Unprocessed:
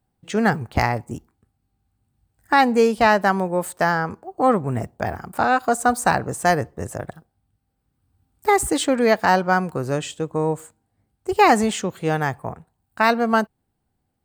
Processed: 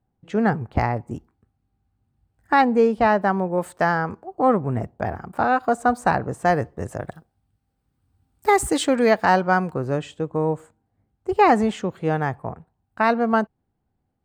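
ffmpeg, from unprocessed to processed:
ffmpeg -i in.wav -af "asetnsamples=nb_out_samples=441:pad=0,asendcmd='1.05 lowpass f 2100;2.62 lowpass f 1100;3.58 lowpass f 2600;4.35 lowpass f 1600;6.55 lowpass f 3300;7.05 lowpass f 8000;9.09 lowpass f 3300;9.74 lowpass f 1500',lowpass=frequency=1100:poles=1" out.wav

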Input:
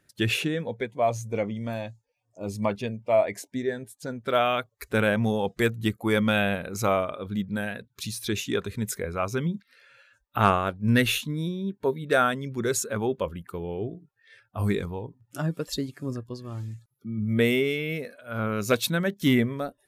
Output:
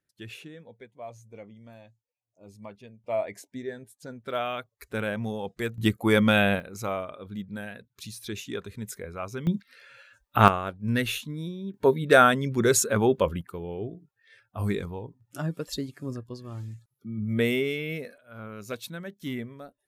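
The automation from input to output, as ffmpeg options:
ffmpeg -i in.wav -af "asetnsamples=nb_out_samples=441:pad=0,asendcmd='3.04 volume volume -7dB;5.78 volume volume 2.5dB;6.6 volume volume -7dB;9.47 volume volume 4dB;10.48 volume volume -5dB;11.74 volume volume 5dB;13.41 volume volume -2.5dB;18.18 volume volume -12.5dB',volume=-17dB" out.wav

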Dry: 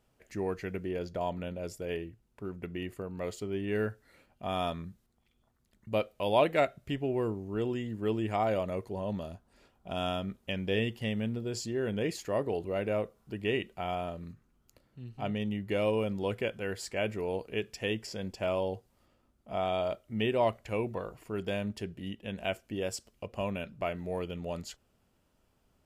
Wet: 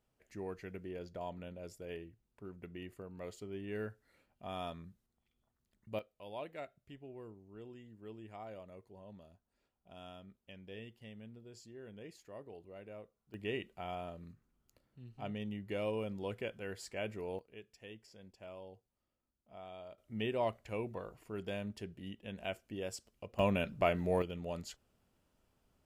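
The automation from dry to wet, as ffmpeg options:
ffmpeg -i in.wav -af "asetnsamples=nb_out_samples=441:pad=0,asendcmd='5.99 volume volume -19dB;13.34 volume volume -8dB;17.39 volume volume -19dB;19.98 volume volume -7dB;23.39 volume volume 3dB;24.22 volume volume -4dB',volume=-9.5dB" out.wav

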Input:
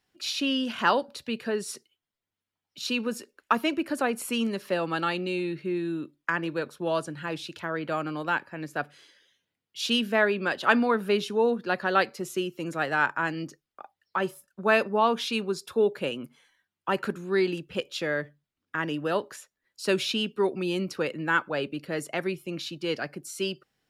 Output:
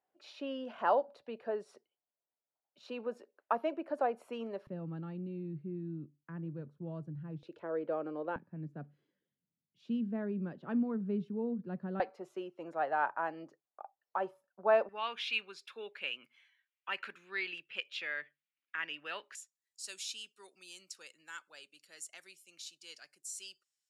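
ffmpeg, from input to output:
ffmpeg -i in.wav -af "asetnsamples=nb_out_samples=441:pad=0,asendcmd='4.67 bandpass f 140;7.43 bandpass f 480;8.36 bandpass f 170;12 bandpass f 730;14.89 bandpass f 2400;19.35 bandpass f 7500',bandpass=frequency=660:width_type=q:width=2.5:csg=0" out.wav

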